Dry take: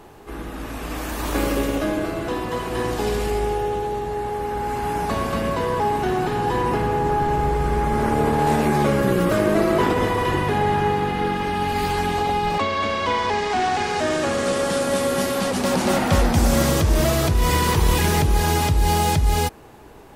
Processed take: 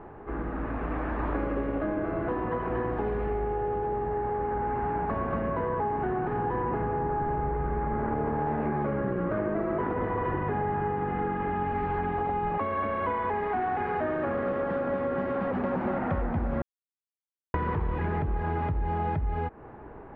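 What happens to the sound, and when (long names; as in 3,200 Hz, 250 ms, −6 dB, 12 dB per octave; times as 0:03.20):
0:16.62–0:17.54: silence
whole clip: low-pass filter 1,800 Hz 24 dB per octave; downward compressor, threshold −26 dBFS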